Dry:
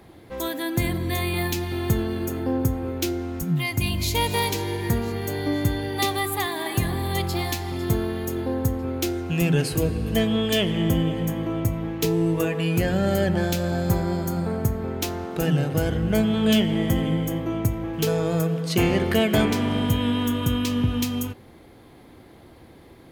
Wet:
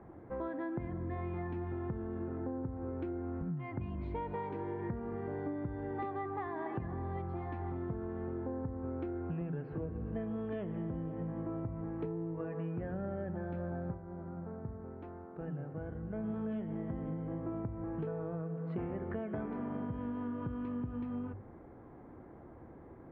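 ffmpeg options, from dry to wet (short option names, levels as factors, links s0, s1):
-filter_complex "[0:a]asplit=3[s0][s1][s2];[s0]atrim=end=14.39,asetpts=PTS-STARTPTS,afade=t=out:st=13.91:d=0.48:c=exp:silence=0.211349[s3];[s1]atrim=start=14.39:end=15.83,asetpts=PTS-STARTPTS,volume=0.211[s4];[s2]atrim=start=15.83,asetpts=PTS-STARTPTS,afade=t=in:d=0.48:c=exp:silence=0.211349[s5];[s3][s4][s5]concat=n=3:v=0:a=1,lowpass=f=1500:w=0.5412,lowpass=f=1500:w=1.3066,bandreject=f=50:t=h:w=6,bandreject=f=100:t=h:w=6,acompressor=threshold=0.0282:ratio=12,volume=0.631"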